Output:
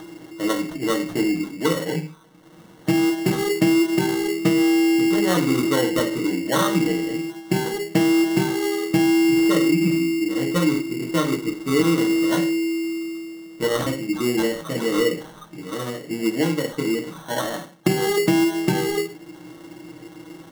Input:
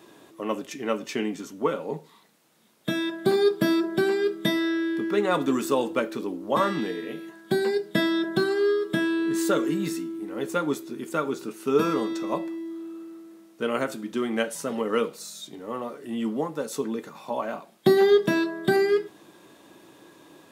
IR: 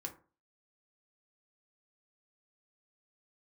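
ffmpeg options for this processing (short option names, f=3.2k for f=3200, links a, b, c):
-filter_complex "[0:a]aemphasis=mode=reproduction:type=75kf,asettb=1/sr,asplit=3[a][b][c];[a]atrim=end=13.814[d];[b]atrim=start=13.81:end=16.11,asetpts=PTS-STARTPTS,afade=t=in:d=0.004:c=qsin,afade=t=out:st=2.296:d=0.004:c=qsin,acrossover=split=830[e][f];[e]adelay=50[g];[g][f]amix=inputs=2:normalize=0,atrim=end_sample=101430[h];[c]atrim=start=16.106[i];[d][h]acrossfade=d=0.004:c1=hsin:c2=qsin[j];[j][i]acrossfade=d=0.004:c1=qsin:c2=hsin[k];[1:a]atrim=start_sample=2205,afade=t=out:st=0.21:d=0.01,atrim=end_sample=9702[l];[k][l]afir=irnorm=-1:irlink=0,acompressor=mode=upward:threshold=-44dB:ratio=2.5,bass=f=250:g=8,treble=f=4k:g=5,acrusher=samples=18:mix=1:aa=0.000001,aecho=1:1:6.5:0.33,acompressor=threshold=-20dB:ratio=6,volume=5.5dB"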